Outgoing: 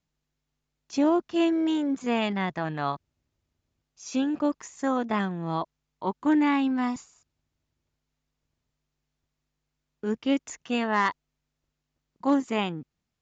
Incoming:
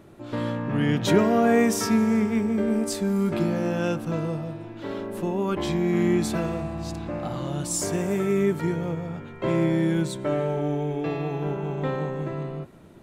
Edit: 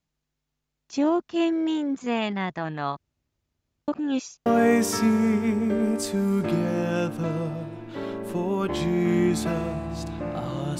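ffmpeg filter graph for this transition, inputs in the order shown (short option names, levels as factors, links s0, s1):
-filter_complex "[0:a]apad=whole_dur=10.79,atrim=end=10.79,asplit=2[s0][s1];[s0]atrim=end=3.882[s2];[s1]atrim=start=3.878:end=4.462,asetpts=PTS-STARTPTS,areverse[s3];[1:a]atrim=start=1.338:end=7.67[s4];[s2][s3]acrossfade=d=0.004:c1=hsin:c2=hsin[s5];[s5][s4]acrossfade=d=0.004:c1=hsin:c2=hsin"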